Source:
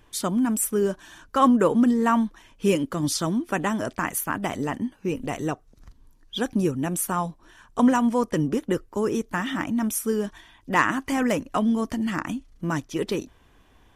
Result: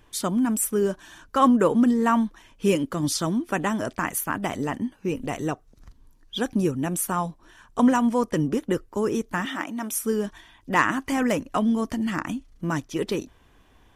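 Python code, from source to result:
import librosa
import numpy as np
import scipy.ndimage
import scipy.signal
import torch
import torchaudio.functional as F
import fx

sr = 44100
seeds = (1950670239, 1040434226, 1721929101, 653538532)

y = fx.highpass(x, sr, hz=340.0, slope=12, at=(9.45, 9.92))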